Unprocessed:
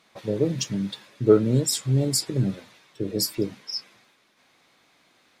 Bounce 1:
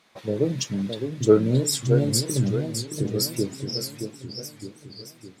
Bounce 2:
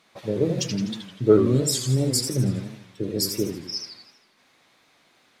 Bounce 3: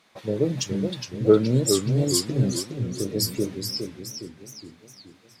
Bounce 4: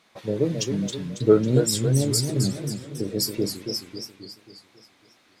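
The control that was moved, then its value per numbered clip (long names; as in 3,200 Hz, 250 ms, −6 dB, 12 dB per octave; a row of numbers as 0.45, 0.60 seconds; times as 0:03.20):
feedback echo with a swinging delay time, delay time: 616, 81, 418, 271 milliseconds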